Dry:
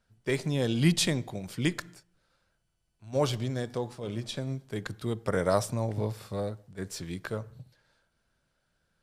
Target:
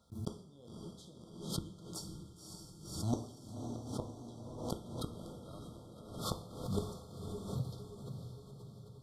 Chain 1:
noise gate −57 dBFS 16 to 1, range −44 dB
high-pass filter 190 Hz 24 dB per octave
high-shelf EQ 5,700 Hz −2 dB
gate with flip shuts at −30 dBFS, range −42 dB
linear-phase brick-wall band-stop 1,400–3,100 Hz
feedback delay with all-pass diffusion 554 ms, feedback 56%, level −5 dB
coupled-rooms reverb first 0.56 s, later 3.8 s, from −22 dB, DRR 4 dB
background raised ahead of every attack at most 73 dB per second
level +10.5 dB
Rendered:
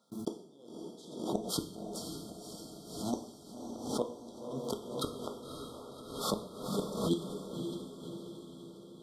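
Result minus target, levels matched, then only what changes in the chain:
125 Hz band −8.0 dB
change: high-pass filter 54 Hz 24 dB per octave

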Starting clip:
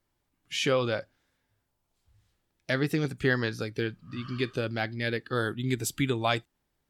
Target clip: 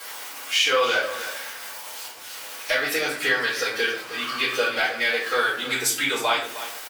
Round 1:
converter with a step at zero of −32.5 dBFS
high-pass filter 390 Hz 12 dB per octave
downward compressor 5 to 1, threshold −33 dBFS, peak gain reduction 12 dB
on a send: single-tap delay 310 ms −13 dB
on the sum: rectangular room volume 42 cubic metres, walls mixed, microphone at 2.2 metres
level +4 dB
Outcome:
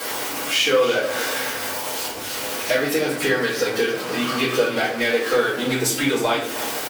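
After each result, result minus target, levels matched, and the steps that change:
500 Hz band +5.0 dB; converter with a step at zero: distortion +7 dB
change: high-pass filter 900 Hz 12 dB per octave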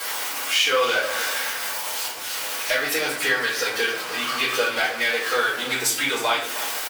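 converter with a step at zero: distortion +7 dB
change: converter with a step at zero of −41 dBFS

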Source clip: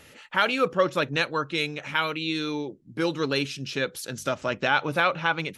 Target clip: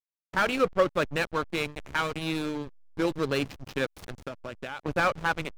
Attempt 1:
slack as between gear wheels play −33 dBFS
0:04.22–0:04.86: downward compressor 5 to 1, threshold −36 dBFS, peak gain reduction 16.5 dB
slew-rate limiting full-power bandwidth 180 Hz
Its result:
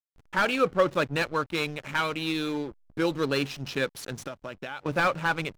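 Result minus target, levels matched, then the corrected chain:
slack as between gear wheels: distortion −8 dB
slack as between gear wheels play −24 dBFS
0:04.22–0:04.86: downward compressor 5 to 1, threshold −36 dBFS, peak gain reduction 16 dB
slew-rate limiting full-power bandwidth 180 Hz

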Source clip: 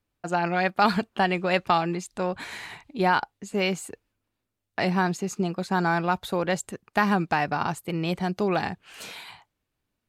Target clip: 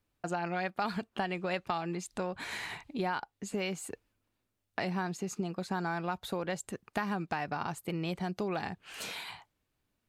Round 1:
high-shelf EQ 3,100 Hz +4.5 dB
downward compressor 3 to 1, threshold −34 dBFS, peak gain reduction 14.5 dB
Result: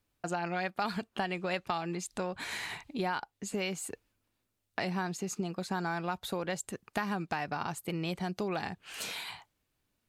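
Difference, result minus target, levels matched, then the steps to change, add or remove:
8,000 Hz band +3.0 dB
remove: high-shelf EQ 3,100 Hz +4.5 dB

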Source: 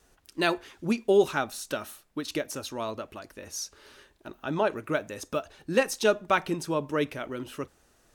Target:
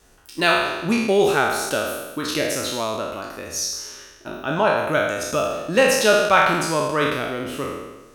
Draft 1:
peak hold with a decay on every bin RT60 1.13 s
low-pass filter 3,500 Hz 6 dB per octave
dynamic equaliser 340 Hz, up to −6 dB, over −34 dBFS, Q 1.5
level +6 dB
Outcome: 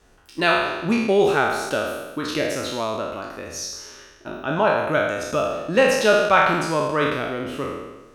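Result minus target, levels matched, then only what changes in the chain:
4,000 Hz band −2.5 dB
remove: low-pass filter 3,500 Hz 6 dB per octave

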